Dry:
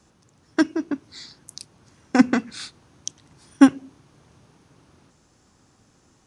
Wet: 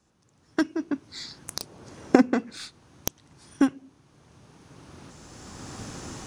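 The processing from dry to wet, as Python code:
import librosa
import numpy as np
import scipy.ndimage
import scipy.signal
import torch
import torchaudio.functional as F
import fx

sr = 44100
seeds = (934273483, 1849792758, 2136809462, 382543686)

y = fx.tracing_dist(x, sr, depth_ms=0.046)
y = fx.recorder_agc(y, sr, target_db=-5.0, rise_db_per_s=14.0, max_gain_db=30)
y = fx.peak_eq(y, sr, hz=480.0, db=8.5, octaves=1.7, at=(1.59, 2.57))
y = F.gain(torch.from_numpy(y), -9.5).numpy()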